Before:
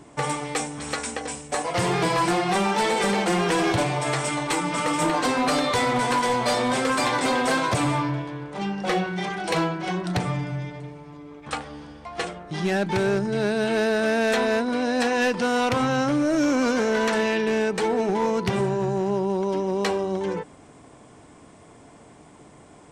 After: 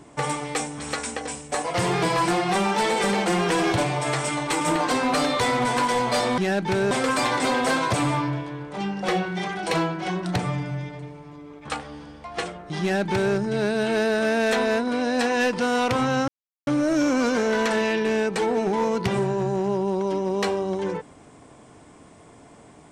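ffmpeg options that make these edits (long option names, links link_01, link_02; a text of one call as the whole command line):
ffmpeg -i in.wav -filter_complex "[0:a]asplit=5[link_01][link_02][link_03][link_04][link_05];[link_01]atrim=end=4.612[link_06];[link_02]atrim=start=4.948:end=6.722[link_07];[link_03]atrim=start=12.618:end=13.152[link_08];[link_04]atrim=start=6.718:end=16.09,asetpts=PTS-STARTPTS,afade=type=out:start_time=9.368:duration=0.004:curve=hsin,apad=pad_dur=0.39[link_09];[link_05]atrim=start=16.09,asetpts=PTS-STARTPTS,afade=type=in:duration=0.004:curve=hsin[link_10];[link_06][link_07]acrossfade=duration=0.004:curve1=hsin:curve2=hsin[link_11];[link_11][link_08]acrossfade=duration=0.004:curve1=hsin:curve2=hsin[link_12];[link_09][link_10]concat=n=2:v=0:a=1[link_13];[link_12][link_13]acrossfade=duration=0.004:curve1=hsin:curve2=hsin" out.wav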